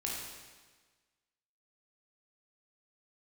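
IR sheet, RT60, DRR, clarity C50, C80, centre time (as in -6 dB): 1.4 s, -4.0 dB, -0.5 dB, 2.0 dB, 84 ms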